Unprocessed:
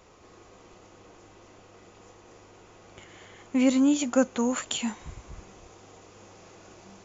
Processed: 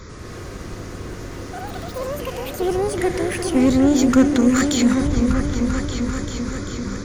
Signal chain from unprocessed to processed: low shelf 170 Hz +8 dB; in parallel at -1 dB: negative-ratio compressor -34 dBFS, ratio -0.5; on the sum: fixed phaser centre 2800 Hz, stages 6; one-sided clip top -26.5 dBFS; echoes that change speed 93 ms, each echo +6 st, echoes 3, each echo -6 dB; on a send: repeats that get brighter 0.392 s, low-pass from 400 Hz, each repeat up 2 oct, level -3 dB; on the sum: gain +7.5 dB

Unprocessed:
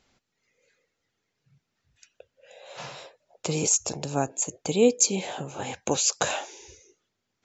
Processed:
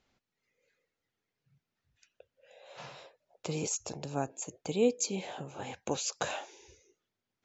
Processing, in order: air absorption 68 m; gain -7 dB

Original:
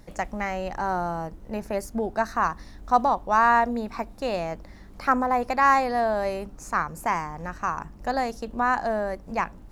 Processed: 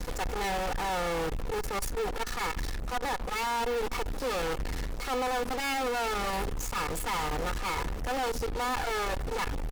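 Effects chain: minimum comb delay 2.3 ms; low shelf 61 Hz +5 dB; de-hum 118.8 Hz, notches 3; reverse; compressor 8:1, threshold -32 dBFS, peak gain reduction 17 dB; reverse; comb 4.1 ms, depth 51%; in parallel at -9.5 dB: fuzz box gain 57 dB, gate -53 dBFS; on the sum: gain -8.5 dB

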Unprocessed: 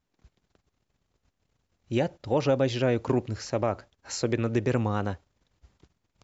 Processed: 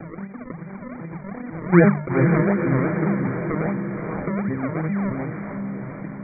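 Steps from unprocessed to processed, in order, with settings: arpeggiated vocoder minor triad, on D3, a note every 0.184 s; Doppler pass-by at 1.76, 36 m/s, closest 2.8 m; low shelf 180 Hz +7.5 dB; notches 50/100/150 Hz; in parallel at 0 dB: upward compressor, threshold -37 dBFS; on the sum: decimation with a swept rate 39×, swing 100% 2.6 Hz; brick-wall FIR low-pass 2400 Hz; diffused feedback echo 0.491 s, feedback 45%, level -11.5 dB; fast leveller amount 50%; gain +4.5 dB

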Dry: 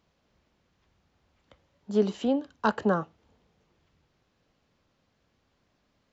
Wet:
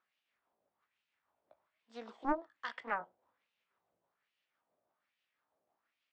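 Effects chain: delay-line pitch shifter +2 st; LFO band-pass sine 1.2 Hz 620–2800 Hz; Doppler distortion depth 0.7 ms; gain -2 dB

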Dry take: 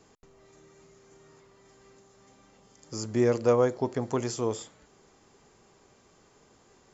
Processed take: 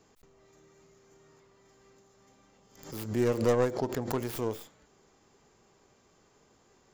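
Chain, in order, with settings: tracing distortion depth 0.3 ms; backwards sustainer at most 100 dB/s; gain -4 dB

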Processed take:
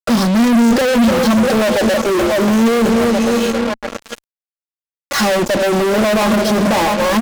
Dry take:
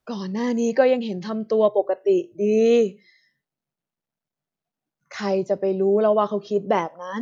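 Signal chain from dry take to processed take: bell 2200 Hz -6.5 dB 0.69 oct; notches 50/100/150/200/250/300/350/400/450 Hz; on a send: split-band echo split 610 Hz, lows 0.292 s, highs 0.687 s, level -13 dB; on the sum: sample leveller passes 3; comb 3.6 ms, depth 84%; fuzz box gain 32 dB, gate -33 dBFS; dynamic EQ 230 Hz, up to +5 dB, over -29 dBFS, Q 6.7

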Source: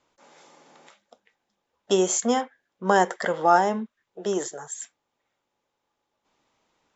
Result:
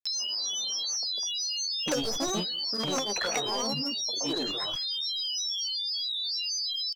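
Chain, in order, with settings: tracing distortion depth 0.082 ms; in parallel at -0.5 dB: compressor 5:1, threshold -29 dBFS, peak gain reduction 15 dB; on the sum: low shelf 70 Hz +7 dB; treble ducked by the level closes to 370 Hz, closed at -14 dBFS; expander -52 dBFS; low-pass opened by the level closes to 710 Hz, open at -22 dBFS; whine 4200 Hz -30 dBFS; speakerphone echo 0.22 s, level -23 dB; hard clip -19 dBFS, distortion -11 dB; grains 0.136 s, grains 27/s, pitch spread up and down by 7 st; upward compressor, threshold -32 dBFS; tilt +2 dB/oct

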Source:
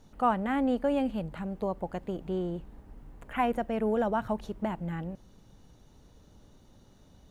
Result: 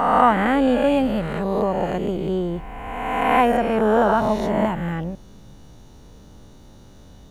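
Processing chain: spectral swells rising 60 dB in 1.72 s; gain +8 dB

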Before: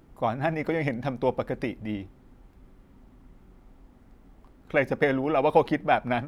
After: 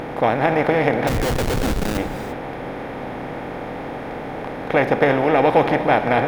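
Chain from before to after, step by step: per-bin compression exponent 0.4; 1.07–1.98 Schmitt trigger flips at -22.5 dBFS; non-linear reverb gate 0.37 s rising, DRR 9.5 dB; gain +1.5 dB

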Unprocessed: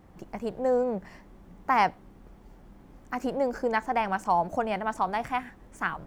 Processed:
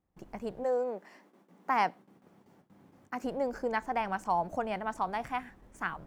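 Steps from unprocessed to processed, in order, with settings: gate with hold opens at -42 dBFS; 0.63–3.23 HPF 330 Hz -> 80 Hz 24 dB/oct; gain -5 dB

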